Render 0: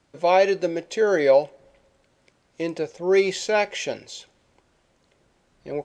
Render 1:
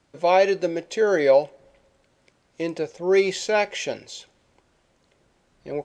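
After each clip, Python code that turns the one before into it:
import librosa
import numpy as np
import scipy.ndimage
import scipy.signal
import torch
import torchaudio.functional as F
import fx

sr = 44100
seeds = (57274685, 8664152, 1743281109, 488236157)

y = x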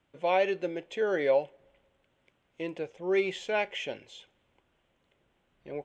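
y = fx.high_shelf_res(x, sr, hz=3800.0, db=-6.0, q=3.0)
y = y * librosa.db_to_amplitude(-8.5)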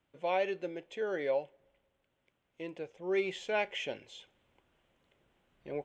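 y = fx.rider(x, sr, range_db=10, speed_s=2.0)
y = y * librosa.db_to_amplitude(-4.5)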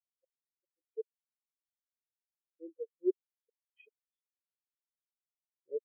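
y = fx.gate_flip(x, sr, shuts_db=-27.0, range_db=-42)
y = fx.spectral_expand(y, sr, expansion=4.0)
y = y * librosa.db_to_amplitude(7.0)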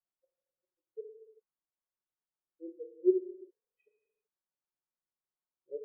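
y = scipy.signal.sosfilt(scipy.signal.butter(4, 1500.0, 'lowpass', fs=sr, output='sos'), x)
y = y + 0.51 * np.pad(y, (int(5.5 * sr / 1000.0), 0))[:len(y)]
y = fx.rev_gated(y, sr, seeds[0], gate_ms=410, shape='falling', drr_db=4.0)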